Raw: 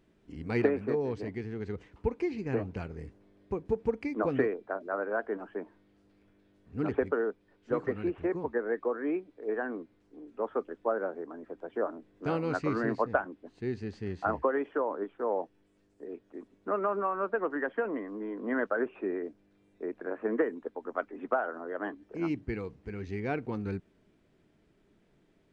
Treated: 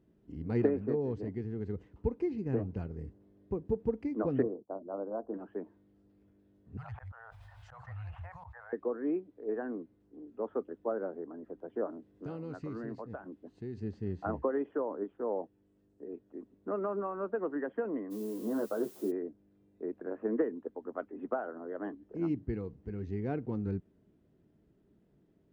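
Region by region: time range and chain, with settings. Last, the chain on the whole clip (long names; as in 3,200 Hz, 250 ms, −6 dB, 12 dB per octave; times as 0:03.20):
0:04.42–0:05.34: Butterworth low-pass 1,100 Hz + notch filter 420 Hz, Q 7.6 + downward expander −48 dBFS
0:06.77–0:08.73: elliptic band-stop filter 110–780 Hz, stop band 50 dB + volume swells 228 ms + envelope flattener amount 70%
0:11.90–0:13.80: downward compressor 2.5 to 1, threshold −39 dBFS + high-shelf EQ 2,500 Hz +6.5 dB
0:18.10–0:19.10: inverse Chebyshev low-pass filter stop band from 2,600 Hz + background noise blue −44 dBFS + double-tracking delay 14 ms −5.5 dB
whole clip: high-pass filter 46 Hz; tilt shelving filter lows +7.5 dB, about 700 Hz; notch filter 2,300 Hz, Q 14; level −5.5 dB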